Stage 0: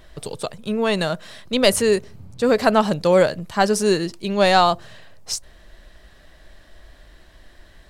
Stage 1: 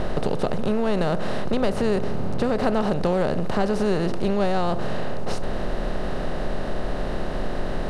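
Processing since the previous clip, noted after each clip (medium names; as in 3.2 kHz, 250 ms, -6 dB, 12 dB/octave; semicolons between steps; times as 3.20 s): spectral levelling over time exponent 0.4; RIAA curve playback; compression, threshold -10 dBFS, peak gain reduction 9 dB; trim -7.5 dB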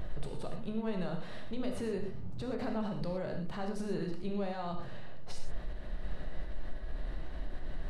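expander on every frequency bin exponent 2; peak limiter -25 dBFS, peak gain reduction 10.5 dB; on a send at -2.5 dB: reverberation, pre-delay 14 ms; on the sum: trim -5 dB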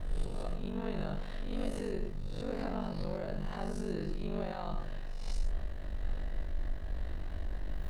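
reverse spectral sustain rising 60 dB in 0.68 s; added noise brown -47 dBFS; ring modulator 24 Hz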